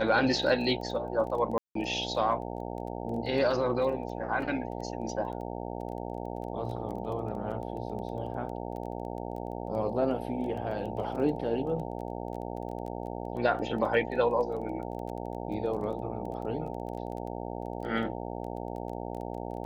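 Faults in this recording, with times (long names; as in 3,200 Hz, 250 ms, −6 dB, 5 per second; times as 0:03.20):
mains buzz 60 Hz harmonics 15 −37 dBFS
surface crackle 13 per second −38 dBFS
0:01.58–0:01.75: drop-out 173 ms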